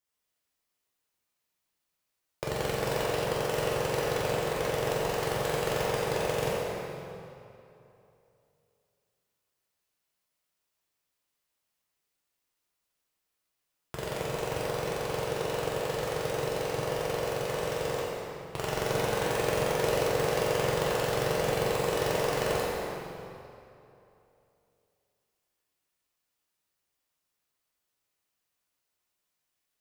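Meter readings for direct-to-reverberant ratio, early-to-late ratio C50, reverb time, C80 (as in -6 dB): -7.0 dB, -2.5 dB, 2.8 s, -1.0 dB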